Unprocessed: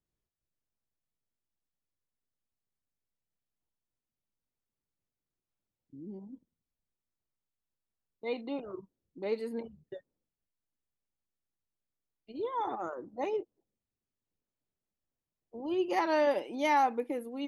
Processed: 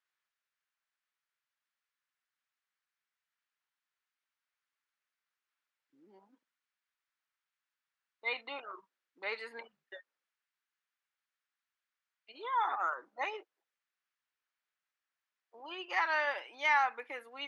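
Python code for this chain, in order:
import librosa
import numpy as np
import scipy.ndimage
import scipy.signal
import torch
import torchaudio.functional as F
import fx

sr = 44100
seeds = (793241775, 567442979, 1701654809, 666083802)

y = fx.high_shelf(x, sr, hz=3600.0, db=-7.0)
y = fx.rider(y, sr, range_db=3, speed_s=0.5)
y = fx.highpass_res(y, sr, hz=1500.0, q=1.7)
y = fx.air_absorb(y, sr, metres=73.0)
y = F.gain(torch.from_numpy(y), 6.5).numpy()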